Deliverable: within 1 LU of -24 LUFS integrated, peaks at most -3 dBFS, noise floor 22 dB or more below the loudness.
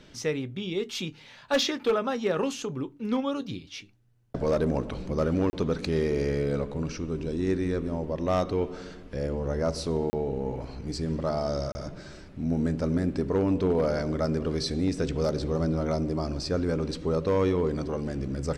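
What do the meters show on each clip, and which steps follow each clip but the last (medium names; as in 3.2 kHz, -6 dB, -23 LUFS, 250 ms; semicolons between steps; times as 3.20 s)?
clipped samples 0.4%; clipping level -18.0 dBFS; dropouts 3; longest dropout 30 ms; loudness -29.0 LUFS; peak level -18.0 dBFS; loudness target -24.0 LUFS
-> clip repair -18 dBFS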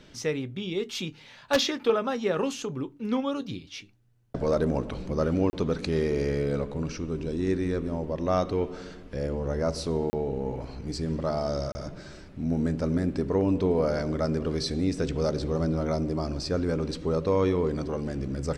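clipped samples 0.0%; dropouts 3; longest dropout 30 ms
-> interpolate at 5.50/10.10/11.72 s, 30 ms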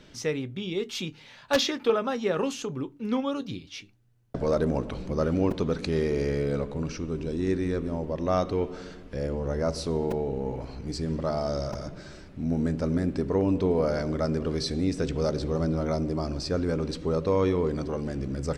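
dropouts 0; loudness -28.5 LUFS; peak level -9.0 dBFS; loudness target -24.0 LUFS
-> trim +4.5 dB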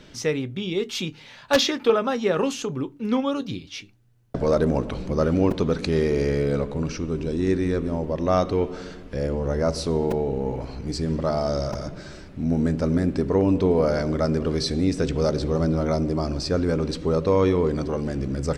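loudness -24.0 LUFS; peak level -4.5 dBFS; noise floor -47 dBFS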